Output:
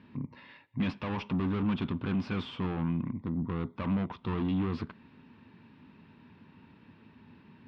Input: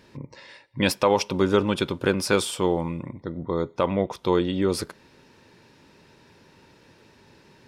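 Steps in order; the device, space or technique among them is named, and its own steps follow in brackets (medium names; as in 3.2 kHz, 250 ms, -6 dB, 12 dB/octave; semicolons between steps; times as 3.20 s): guitar amplifier (valve stage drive 29 dB, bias 0.55; tone controls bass +13 dB, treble -6 dB; cabinet simulation 110–3800 Hz, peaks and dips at 130 Hz -7 dB, 240 Hz +7 dB, 370 Hz -4 dB, 530 Hz -8 dB, 1.1 kHz +5 dB, 2.7 kHz +3 dB); trim -4 dB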